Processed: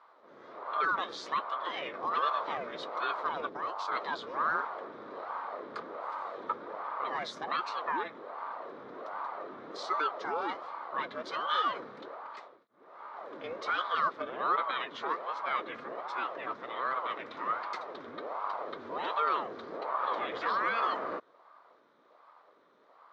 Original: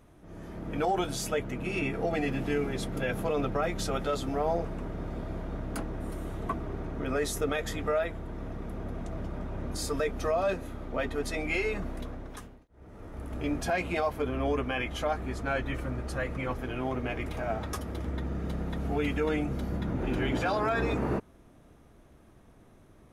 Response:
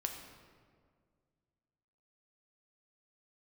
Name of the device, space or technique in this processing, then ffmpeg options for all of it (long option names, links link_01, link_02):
voice changer toy: -filter_complex "[0:a]asettb=1/sr,asplit=3[link_01][link_02][link_03];[link_01]atrim=end=3.494[link_04];[link_02]atrim=start=3.49:end=3.92,asetpts=PTS-STARTPTS,afade=type=in:duration=0.004:curve=qsin,afade=type=out:start_time=0.426:duration=0.004:curve=qsin,equalizer=frequency=1600:width=0.46:gain=-9[link_05];[link_03]atrim=start=3.916[link_06];[link_04][link_05]acrossfade=duration=0.004:curve1=hsin:curve2=qsin[link_07];[link_07][link_06]acrossfade=duration=0.004:curve1=qsin:curve2=hsin,aeval=exprs='val(0)*sin(2*PI*540*n/s+540*0.7/1.3*sin(2*PI*1.3*n/s))':channel_layout=same,highpass=500,equalizer=frequency=790:width_type=q:width=4:gain=-6,equalizer=frequency=1200:width_type=q:width=4:gain=9,equalizer=frequency=2700:width_type=q:width=4:gain=-7,equalizer=frequency=3800:width_type=q:width=4:gain=5,lowpass=frequency=4600:width=0.5412,lowpass=frequency=4600:width=1.3066"